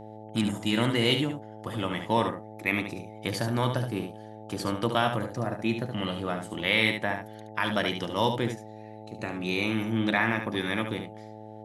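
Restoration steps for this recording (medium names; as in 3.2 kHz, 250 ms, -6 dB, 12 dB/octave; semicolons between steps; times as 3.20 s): de-hum 108 Hz, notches 8; inverse comb 72 ms -7.5 dB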